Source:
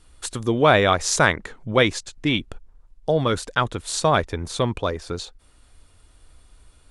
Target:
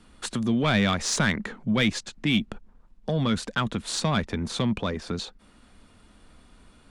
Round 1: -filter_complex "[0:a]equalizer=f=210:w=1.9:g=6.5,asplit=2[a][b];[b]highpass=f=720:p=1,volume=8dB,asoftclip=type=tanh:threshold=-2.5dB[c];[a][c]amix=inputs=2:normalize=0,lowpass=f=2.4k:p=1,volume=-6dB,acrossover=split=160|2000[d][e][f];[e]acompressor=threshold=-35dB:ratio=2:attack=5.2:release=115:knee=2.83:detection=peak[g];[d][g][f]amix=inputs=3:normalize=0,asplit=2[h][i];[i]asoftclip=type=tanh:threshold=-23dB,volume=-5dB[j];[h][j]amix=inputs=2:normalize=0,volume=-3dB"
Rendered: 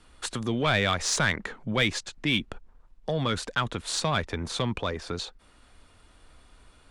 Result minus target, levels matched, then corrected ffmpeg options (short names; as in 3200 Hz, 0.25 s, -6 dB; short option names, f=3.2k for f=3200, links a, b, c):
250 Hz band -5.0 dB
-filter_complex "[0:a]equalizer=f=210:w=1.9:g=18.5,asplit=2[a][b];[b]highpass=f=720:p=1,volume=8dB,asoftclip=type=tanh:threshold=-2.5dB[c];[a][c]amix=inputs=2:normalize=0,lowpass=f=2.4k:p=1,volume=-6dB,acrossover=split=160|2000[d][e][f];[e]acompressor=threshold=-35dB:ratio=2:attack=5.2:release=115:knee=2.83:detection=peak[g];[d][g][f]amix=inputs=3:normalize=0,asplit=2[h][i];[i]asoftclip=type=tanh:threshold=-23dB,volume=-5dB[j];[h][j]amix=inputs=2:normalize=0,volume=-3dB"